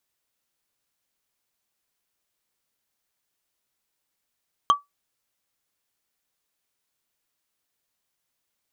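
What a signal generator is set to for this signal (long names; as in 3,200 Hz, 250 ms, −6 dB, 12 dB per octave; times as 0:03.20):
struck wood, lowest mode 1,150 Hz, decay 0.16 s, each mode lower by 8.5 dB, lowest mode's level −9.5 dB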